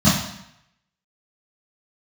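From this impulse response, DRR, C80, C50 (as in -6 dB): -12.0 dB, 6.5 dB, 2.5 dB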